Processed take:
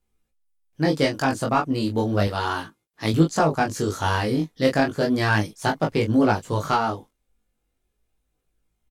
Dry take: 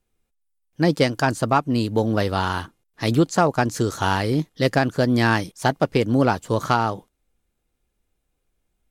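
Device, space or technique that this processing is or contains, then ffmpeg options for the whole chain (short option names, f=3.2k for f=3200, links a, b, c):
double-tracked vocal: -filter_complex "[0:a]asplit=2[a][b];[b]adelay=19,volume=-4dB[c];[a][c]amix=inputs=2:normalize=0,flanger=delay=18:depth=5.1:speed=0.34,asettb=1/sr,asplit=3[d][e][f];[d]atrim=end=2.274[g];[e]atrim=start=2.27:end=3.14,asetpts=PTS-STARTPTS,afade=t=in:d=0.004:c=qsin,afade=t=out:st=0.866:d=0.004:c=qsin,highpass=f=160:p=1[h];[f]atrim=start=3.136[i];[g][h]acrossfade=d=0.004:c1=hsin:c2=qsin[j];[j][i]acrossfade=d=0.004:c1=qsin:c2=hsin"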